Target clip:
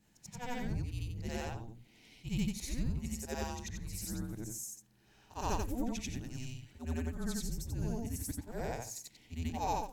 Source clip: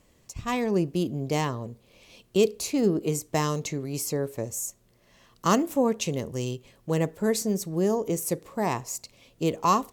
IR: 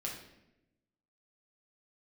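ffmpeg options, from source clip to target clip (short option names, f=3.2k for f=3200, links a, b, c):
-filter_complex "[0:a]afftfilt=real='re':imag='-im':win_size=8192:overlap=0.75,asplit=2[a][b];[b]acompressor=threshold=-42dB:ratio=16,volume=-1dB[c];[a][c]amix=inputs=2:normalize=0,bandreject=f=50:t=h:w=6,bandreject=f=100:t=h:w=6,bandreject=f=150:t=h:w=6,afreqshift=-240,volume=-7.5dB"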